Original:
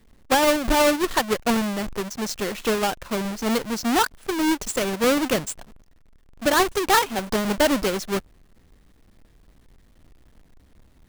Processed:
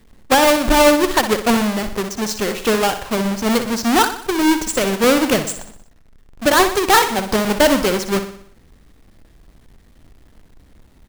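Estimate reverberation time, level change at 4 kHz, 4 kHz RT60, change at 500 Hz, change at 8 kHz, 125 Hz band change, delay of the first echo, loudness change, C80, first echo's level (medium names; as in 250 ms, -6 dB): no reverb, +6.0 dB, no reverb, +6.0 dB, +6.0 dB, +6.0 dB, 61 ms, +6.0 dB, no reverb, -10.0 dB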